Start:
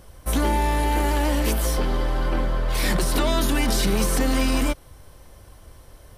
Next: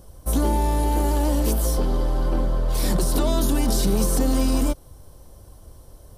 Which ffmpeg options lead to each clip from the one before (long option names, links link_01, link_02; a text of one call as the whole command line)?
ffmpeg -i in.wav -af "equalizer=frequency=2100:width=0.89:gain=-13.5,volume=1.5dB" out.wav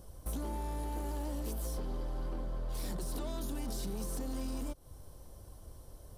ffmpeg -i in.wav -af "acompressor=threshold=-28dB:ratio=8,asoftclip=type=hard:threshold=-26dB,volume=-6dB" out.wav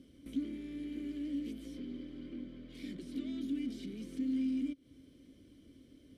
ffmpeg -i in.wav -filter_complex "[0:a]acompressor=threshold=-42dB:ratio=1.5,asplit=3[link_01][link_02][link_03];[link_01]bandpass=frequency=270:width_type=q:width=8,volume=0dB[link_04];[link_02]bandpass=frequency=2290:width_type=q:width=8,volume=-6dB[link_05];[link_03]bandpass=frequency=3010:width_type=q:width=8,volume=-9dB[link_06];[link_04][link_05][link_06]amix=inputs=3:normalize=0,volume=13.5dB" out.wav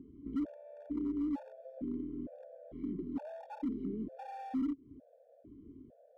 ffmpeg -i in.wav -af "lowpass=frequency=680:width_type=q:width=7.8,volume=34dB,asoftclip=hard,volume=-34dB,afftfilt=real='re*gt(sin(2*PI*1.1*pts/sr)*(1-2*mod(floor(b*sr/1024/470),2)),0)':imag='im*gt(sin(2*PI*1.1*pts/sr)*(1-2*mod(floor(b*sr/1024/470),2)),0)':win_size=1024:overlap=0.75,volume=4dB" out.wav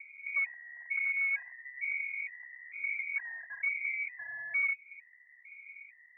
ffmpeg -i in.wav -af "lowpass=frequency=2100:width_type=q:width=0.5098,lowpass=frequency=2100:width_type=q:width=0.6013,lowpass=frequency=2100:width_type=q:width=0.9,lowpass=frequency=2100:width_type=q:width=2.563,afreqshift=-2500,volume=3dB" out.wav